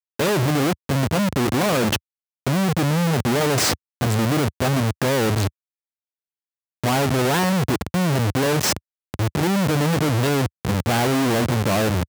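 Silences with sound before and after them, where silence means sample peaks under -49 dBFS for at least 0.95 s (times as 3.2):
5.49–6.84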